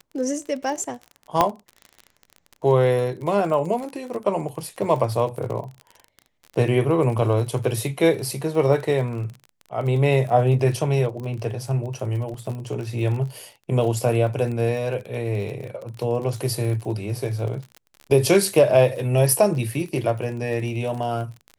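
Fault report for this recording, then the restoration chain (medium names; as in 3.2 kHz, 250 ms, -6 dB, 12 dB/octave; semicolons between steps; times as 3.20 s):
crackle 33 per s -30 dBFS
1.41 s: pop -4 dBFS
12.34 s: dropout 3 ms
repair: de-click; interpolate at 12.34 s, 3 ms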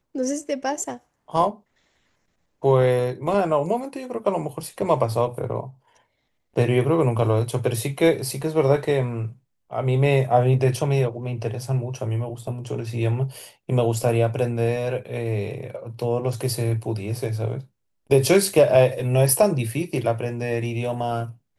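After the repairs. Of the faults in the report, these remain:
nothing left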